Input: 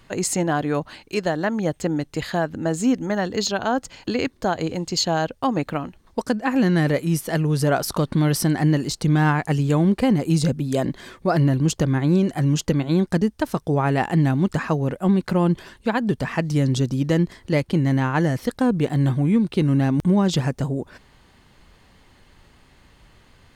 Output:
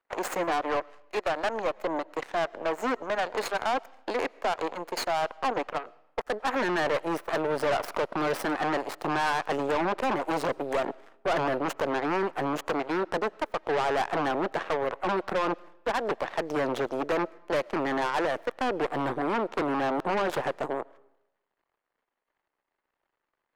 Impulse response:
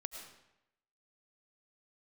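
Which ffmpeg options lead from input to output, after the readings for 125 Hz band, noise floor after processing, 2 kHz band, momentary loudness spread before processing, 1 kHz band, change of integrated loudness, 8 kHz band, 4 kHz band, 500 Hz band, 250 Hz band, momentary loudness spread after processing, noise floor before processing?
-23.5 dB, -83 dBFS, -2.0 dB, 7 LU, -0.5 dB, -7.5 dB, -14.0 dB, -7.0 dB, -3.0 dB, -13.5 dB, 5 LU, -55 dBFS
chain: -filter_complex "[0:a]aeval=exprs='0.335*(cos(1*acos(clip(val(0)/0.335,-1,1)))-cos(1*PI/2))+0.0841*(cos(5*acos(clip(val(0)/0.335,-1,1)))-cos(5*PI/2))+0.075*(cos(6*acos(clip(val(0)/0.335,-1,1)))-cos(6*PI/2))+0.106*(cos(7*acos(clip(val(0)/0.335,-1,1)))-cos(7*PI/2))':c=same,acrossover=split=370 2100:gain=0.0708 1 0.158[s0][s1][s2];[s0][s1][s2]amix=inputs=3:normalize=0,asoftclip=type=tanh:threshold=0.0708,asplit=2[s3][s4];[1:a]atrim=start_sample=2205[s5];[s4][s5]afir=irnorm=-1:irlink=0,volume=0.158[s6];[s3][s6]amix=inputs=2:normalize=0"

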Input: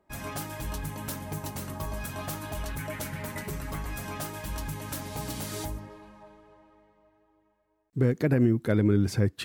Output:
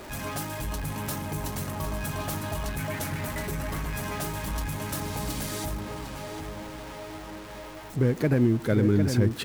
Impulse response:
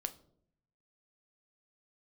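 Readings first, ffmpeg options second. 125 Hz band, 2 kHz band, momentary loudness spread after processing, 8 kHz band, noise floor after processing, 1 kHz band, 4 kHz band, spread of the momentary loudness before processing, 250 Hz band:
+2.0 dB, +3.0 dB, 16 LU, +3.0 dB, -41 dBFS, +4.0 dB, +4.0 dB, 12 LU, +1.5 dB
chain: -filter_complex "[0:a]aeval=exprs='val(0)+0.5*0.015*sgn(val(0))':c=same,asplit=2[s0][s1];[s1]adelay=753,lowpass=f=3700:p=1,volume=0.473,asplit=2[s2][s3];[s3]adelay=753,lowpass=f=3700:p=1,volume=0.48,asplit=2[s4][s5];[s5]adelay=753,lowpass=f=3700:p=1,volume=0.48,asplit=2[s6][s7];[s7]adelay=753,lowpass=f=3700:p=1,volume=0.48,asplit=2[s8][s9];[s9]adelay=753,lowpass=f=3700:p=1,volume=0.48,asplit=2[s10][s11];[s11]adelay=753,lowpass=f=3700:p=1,volume=0.48[s12];[s2][s4][s6][s8][s10][s12]amix=inputs=6:normalize=0[s13];[s0][s13]amix=inputs=2:normalize=0"

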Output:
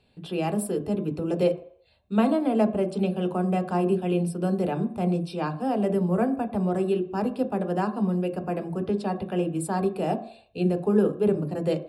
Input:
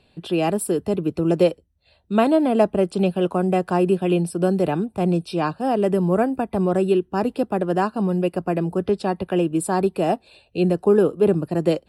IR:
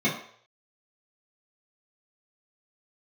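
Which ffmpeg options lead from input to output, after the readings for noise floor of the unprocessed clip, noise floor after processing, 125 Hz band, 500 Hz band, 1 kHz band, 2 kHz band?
-61 dBFS, -58 dBFS, -3.5 dB, -6.0 dB, -5.5 dB, -6.5 dB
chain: -filter_complex "[0:a]asplit=2[s0][s1];[1:a]atrim=start_sample=2205,highshelf=f=4800:g=-11.5[s2];[s1][s2]afir=irnorm=-1:irlink=0,volume=0.126[s3];[s0][s3]amix=inputs=2:normalize=0,volume=0.473"

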